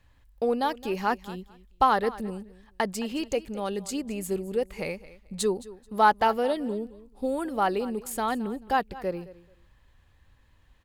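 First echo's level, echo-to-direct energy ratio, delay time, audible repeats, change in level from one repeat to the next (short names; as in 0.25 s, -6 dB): -18.0 dB, -18.0 dB, 0.217 s, 2, -14.0 dB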